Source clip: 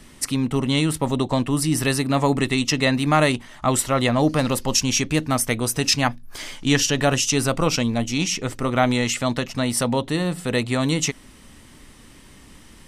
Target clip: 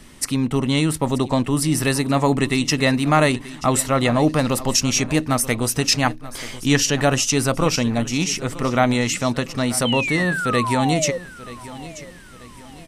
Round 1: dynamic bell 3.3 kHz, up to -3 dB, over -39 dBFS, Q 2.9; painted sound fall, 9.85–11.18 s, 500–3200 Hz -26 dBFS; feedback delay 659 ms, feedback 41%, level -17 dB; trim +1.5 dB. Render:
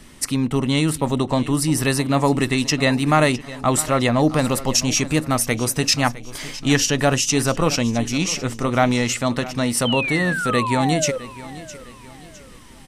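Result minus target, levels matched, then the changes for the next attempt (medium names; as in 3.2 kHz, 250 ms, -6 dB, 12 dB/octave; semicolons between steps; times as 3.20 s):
echo 274 ms early
change: feedback delay 933 ms, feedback 41%, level -17 dB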